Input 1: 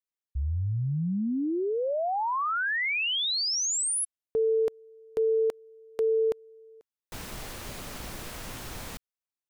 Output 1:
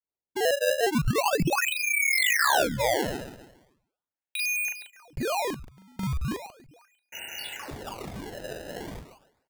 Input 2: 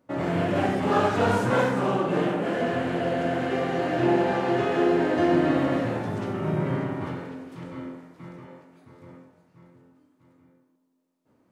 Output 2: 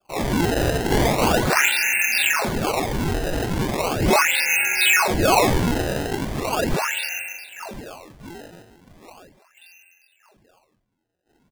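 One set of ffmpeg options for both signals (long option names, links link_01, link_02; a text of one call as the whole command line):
ffmpeg -i in.wav -filter_complex "[0:a]asuperstop=centerf=1700:order=20:qfactor=4.1,equalizer=frequency=450:width=5.3:gain=-8,asplit=2[link_01][link_02];[link_02]adelay=40,volume=-2dB[link_03];[link_01][link_03]amix=inputs=2:normalize=0,lowpass=frequency=2500:width_type=q:width=0.5098,lowpass=frequency=2500:width_type=q:width=0.6013,lowpass=frequency=2500:width_type=q:width=0.9,lowpass=frequency=2500:width_type=q:width=2.563,afreqshift=-2900,adynamicequalizer=threshold=0.0141:dfrequency=1300:dqfactor=1.1:tfrequency=1300:tqfactor=1.1:attack=5:release=100:ratio=0.375:range=2.5:mode=boostabove:tftype=bell,asplit=2[link_04][link_05];[link_05]adelay=139,lowpass=frequency=1800:poles=1,volume=-7dB,asplit=2[link_06][link_07];[link_07]adelay=139,lowpass=frequency=1800:poles=1,volume=0.41,asplit=2[link_08][link_09];[link_09]adelay=139,lowpass=frequency=1800:poles=1,volume=0.41,asplit=2[link_10][link_11];[link_11]adelay=139,lowpass=frequency=1800:poles=1,volume=0.41,asplit=2[link_12][link_13];[link_13]adelay=139,lowpass=frequency=1800:poles=1,volume=0.41[link_14];[link_04][link_06][link_08][link_10][link_12][link_14]amix=inputs=6:normalize=0,acrusher=samples=22:mix=1:aa=0.000001:lfo=1:lforange=35.2:lforate=0.38" out.wav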